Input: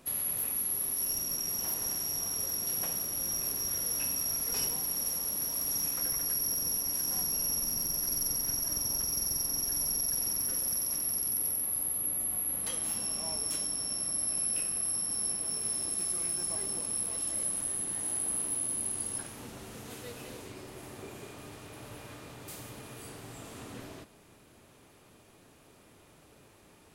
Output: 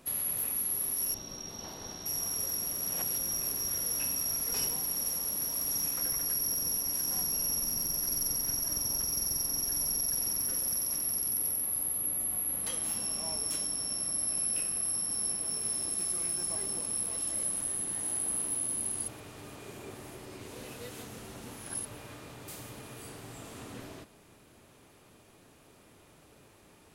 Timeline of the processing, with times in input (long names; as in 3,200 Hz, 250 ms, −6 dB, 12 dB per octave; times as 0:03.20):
0:01.14–0:02.06: drawn EQ curve 850 Hz 0 dB, 2,500 Hz −5 dB, 3,900 Hz +3 dB, 11,000 Hz −23 dB
0:02.67–0:03.18: reverse
0:19.08–0:21.85: reverse